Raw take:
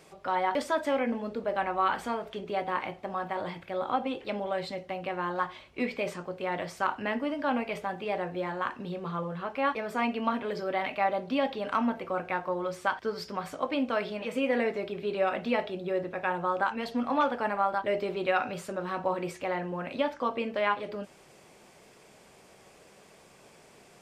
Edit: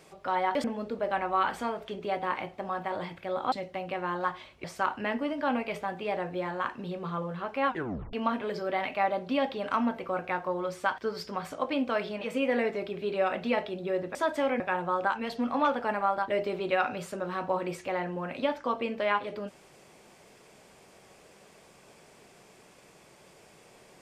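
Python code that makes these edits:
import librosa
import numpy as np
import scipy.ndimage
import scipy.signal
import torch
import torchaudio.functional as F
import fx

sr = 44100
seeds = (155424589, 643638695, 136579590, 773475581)

y = fx.edit(x, sr, fx.move(start_s=0.64, length_s=0.45, to_s=16.16),
    fx.cut(start_s=3.97, length_s=0.7),
    fx.cut(start_s=5.79, length_s=0.86),
    fx.tape_stop(start_s=9.67, length_s=0.47), tone=tone)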